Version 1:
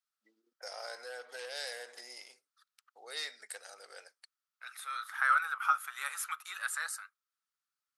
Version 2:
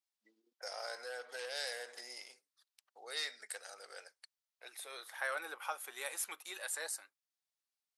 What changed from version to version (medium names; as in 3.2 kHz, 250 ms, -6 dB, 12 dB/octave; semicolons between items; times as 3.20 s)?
second voice: remove resonant high-pass 1.3 kHz, resonance Q 8.1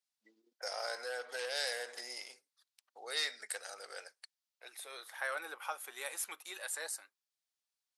first voice +4.0 dB